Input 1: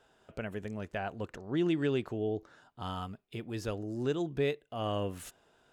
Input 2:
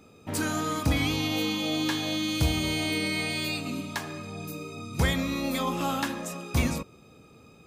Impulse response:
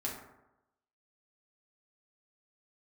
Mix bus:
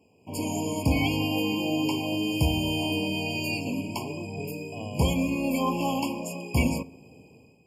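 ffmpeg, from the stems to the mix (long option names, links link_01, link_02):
-filter_complex "[0:a]acompressor=threshold=-33dB:ratio=6,volume=-2.5dB[link_01];[1:a]dynaudnorm=framelen=110:gausssize=7:maxgain=11dB,volume=-9dB,asplit=2[link_02][link_03];[link_03]volume=-18dB[link_04];[2:a]atrim=start_sample=2205[link_05];[link_04][link_05]afir=irnorm=-1:irlink=0[link_06];[link_01][link_02][link_06]amix=inputs=3:normalize=0,highpass=65,afftfilt=real='re*eq(mod(floor(b*sr/1024/1100),2),0)':imag='im*eq(mod(floor(b*sr/1024/1100),2),0)':win_size=1024:overlap=0.75"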